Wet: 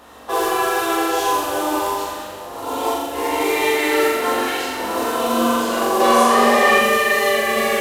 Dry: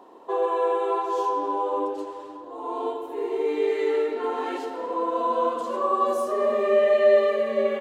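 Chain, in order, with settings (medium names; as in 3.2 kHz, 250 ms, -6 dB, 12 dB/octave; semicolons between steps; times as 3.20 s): spectral peaks clipped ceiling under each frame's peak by 20 dB; peaking EQ 69 Hz +13.5 dB 0.64 oct; hum notches 50/100/150/200/250/300/350/400 Hz; peak limiter -16.5 dBFS, peak gain reduction 9 dB; chorus 0.31 Hz, delay 17 ms, depth 6.3 ms; modulation noise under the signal 12 dB; 6.00–6.79 s: overdrive pedal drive 14 dB, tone 3.1 kHz, clips at -9.5 dBFS; flutter echo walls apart 7.3 m, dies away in 0.87 s; trim +7.5 dB; SBC 192 kbps 32 kHz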